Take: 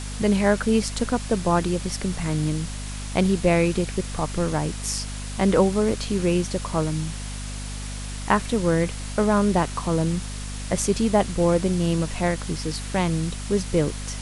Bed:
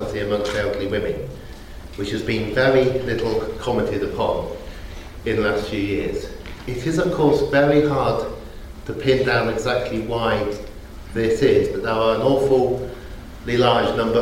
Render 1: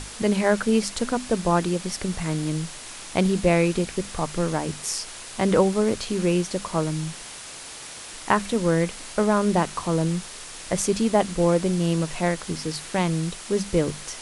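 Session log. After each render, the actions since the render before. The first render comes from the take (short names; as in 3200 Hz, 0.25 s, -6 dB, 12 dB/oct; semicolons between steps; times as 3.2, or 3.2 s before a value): notches 50/100/150/200/250 Hz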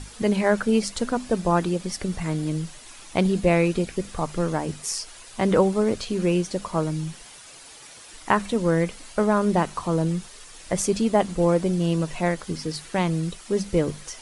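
denoiser 9 dB, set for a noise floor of -39 dBFS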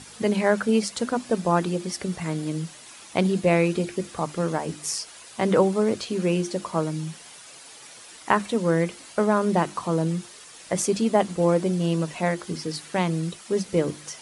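HPF 120 Hz 12 dB/oct; notches 50/100/150/200/250/300/350 Hz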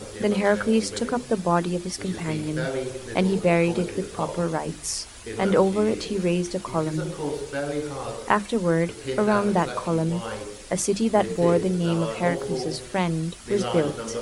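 add bed -13 dB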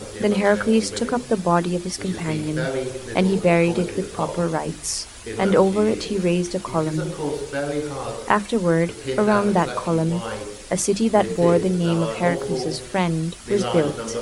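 gain +3 dB; limiter -2 dBFS, peak gain reduction 1.5 dB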